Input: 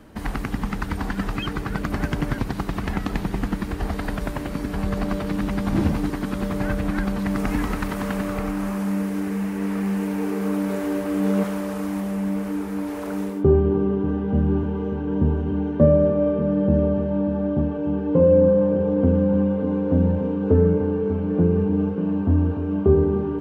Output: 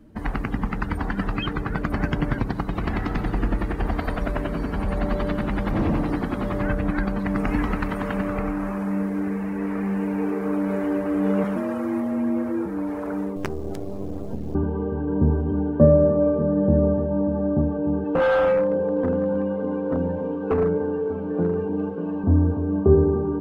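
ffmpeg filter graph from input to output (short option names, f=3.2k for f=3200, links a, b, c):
-filter_complex "[0:a]asettb=1/sr,asplit=3[a][b][c];[a]atrim=end=2.664[d];[b]atrim=start=2.66:end=6.62,asetpts=PTS-STARTPTS,afade=t=in:d=0.004:c=qsin,afade=t=out:st=3.956:d=0.004:c=qsin,volume=20dB,asoftclip=hard,volume=-20dB,aecho=1:1:90|180|270|360|450|540|630|720:0.596|0.351|0.207|0.122|0.0722|0.0426|0.0251|0.0148,atrim=end_sample=174636[e];[c]atrim=start=6.616[f];[d][e]acrossfade=d=0.004:c1=hsin:c2=qsin[g];[g][f]acrossfade=d=0.004:c1=qsin:c2=hsin,asettb=1/sr,asplit=3[h][i][j];[h]atrim=end=11.564[k];[i]atrim=start=11.56:end=12.66,asetpts=PTS-STARTPTS,afade=t=in:d=0.004:c=qsin,afade=t=out:st=1.096:d=0.004:c=qsin,aecho=1:1:3.8:0.32,atrim=end_sample=48510,afreqshift=41[l];[j]atrim=start=12.656[m];[k][l]acrossfade=d=0.004:c1=hsin:c2=qsin[n];[n][m]acrossfade=d=0.004:c1=qsin:c2=hsin,asettb=1/sr,asplit=3[o][p][q];[o]atrim=end=13.364[r];[p]atrim=start=13.36:end=14.55,asetpts=PTS-STARTPTS,afade=t=in:d=0.004:c=qsin,afade=t=out:st=1.186:d=0.004:c=qsin,equalizer=f=2.2k:w=0.37:g=-8,acompressor=threshold=-22dB:ratio=12:attack=3.2:release=140:knee=1:detection=peak,acrusher=bits=4:dc=4:mix=0:aa=0.000001[s];[q]atrim=start=14.546[t];[r][s]acrossfade=d=0.004:c1=hsin:c2=qsin[u];[u][t]acrossfade=d=0.004:c1=qsin:c2=hsin,asettb=1/sr,asplit=3[v][w][x];[v]atrim=end=18.044[y];[w]atrim=start=18.04:end=22.24,asetpts=PTS-STARTPTS,afade=t=in:d=0.004:c=qsin,afade=t=out:st=4.196:d=0.004:c=qsin,highpass=f=330:p=1,highshelf=f=2.4k:g=8,aeval=exprs='0.168*(abs(mod(val(0)/0.168+3,4)-2)-1)':c=same[z];[x]atrim=start=22.236[aa];[y][z]acrossfade=d=0.004:c1=hsin:c2=qsin[ab];[ab][aa]acrossfade=d=0.004:c1=qsin:c2=hsin,bandreject=f=66.34:t=h:w=4,bandreject=f=132.68:t=h:w=4,bandreject=f=199.02:t=h:w=4,bandreject=f=265.36:t=h:w=4,bandreject=f=331.7:t=h:w=4,bandreject=f=398.04:t=h:w=4,afftdn=nr=14:nf=-41,volume=1dB"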